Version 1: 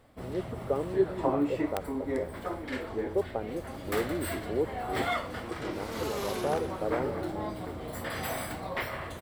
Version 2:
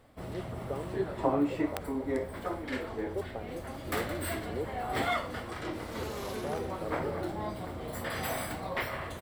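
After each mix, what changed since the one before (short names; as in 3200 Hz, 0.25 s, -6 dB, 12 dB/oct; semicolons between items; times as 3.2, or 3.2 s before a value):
speech -7.5 dB; second sound -5.5 dB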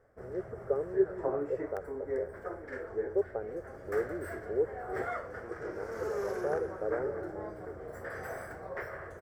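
first sound -8.0 dB; master: add EQ curve 110 Hz 0 dB, 280 Hz -7 dB, 410 Hz +9 dB, 640 Hz +3 dB, 1000 Hz -3 dB, 1600 Hz +8 dB, 2700 Hz -15 dB, 3900 Hz -20 dB, 5500 Hz -3 dB, 10000 Hz -10 dB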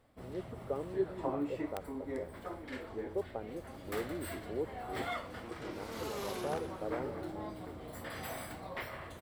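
master: remove EQ curve 110 Hz 0 dB, 280 Hz -7 dB, 410 Hz +9 dB, 640 Hz +3 dB, 1000 Hz -3 dB, 1600 Hz +8 dB, 2700 Hz -15 dB, 3900 Hz -20 dB, 5500 Hz -3 dB, 10000 Hz -10 dB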